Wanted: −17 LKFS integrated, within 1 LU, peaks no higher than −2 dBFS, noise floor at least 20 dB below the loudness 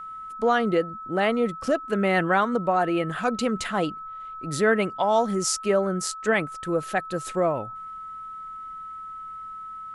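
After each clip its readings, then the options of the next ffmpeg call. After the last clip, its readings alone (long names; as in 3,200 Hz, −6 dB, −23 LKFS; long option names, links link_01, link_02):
interfering tone 1,300 Hz; level of the tone −35 dBFS; integrated loudness −24.5 LKFS; sample peak −9.5 dBFS; target loudness −17.0 LKFS
→ -af "bandreject=frequency=1300:width=30"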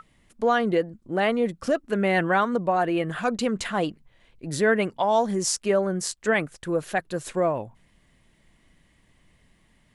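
interfering tone none found; integrated loudness −25.0 LKFS; sample peak −10.5 dBFS; target loudness −17.0 LKFS
→ -af "volume=8dB"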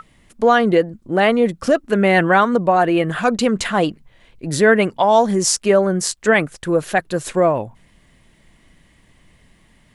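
integrated loudness −17.0 LKFS; sample peak −2.5 dBFS; background noise floor −55 dBFS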